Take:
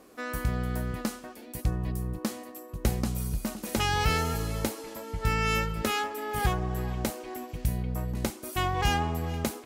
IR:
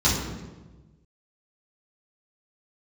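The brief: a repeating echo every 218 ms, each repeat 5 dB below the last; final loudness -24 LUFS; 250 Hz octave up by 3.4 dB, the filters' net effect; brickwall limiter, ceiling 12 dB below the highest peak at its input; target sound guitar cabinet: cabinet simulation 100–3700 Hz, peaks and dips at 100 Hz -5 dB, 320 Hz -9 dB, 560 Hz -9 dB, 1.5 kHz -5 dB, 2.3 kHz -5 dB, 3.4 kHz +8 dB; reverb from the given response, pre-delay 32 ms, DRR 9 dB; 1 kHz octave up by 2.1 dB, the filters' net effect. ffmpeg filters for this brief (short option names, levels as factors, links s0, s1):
-filter_complex "[0:a]equalizer=f=250:t=o:g=7,equalizer=f=1000:t=o:g=4.5,alimiter=limit=0.075:level=0:latency=1,aecho=1:1:218|436|654|872|1090|1308|1526:0.562|0.315|0.176|0.0988|0.0553|0.031|0.0173,asplit=2[s0][s1];[1:a]atrim=start_sample=2205,adelay=32[s2];[s1][s2]afir=irnorm=-1:irlink=0,volume=0.0562[s3];[s0][s3]amix=inputs=2:normalize=0,highpass=100,equalizer=f=100:t=q:w=4:g=-5,equalizer=f=320:t=q:w=4:g=-9,equalizer=f=560:t=q:w=4:g=-9,equalizer=f=1500:t=q:w=4:g=-5,equalizer=f=2300:t=q:w=4:g=-5,equalizer=f=3400:t=q:w=4:g=8,lowpass=f=3700:w=0.5412,lowpass=f=3700:w=1.3066,volume=2.51"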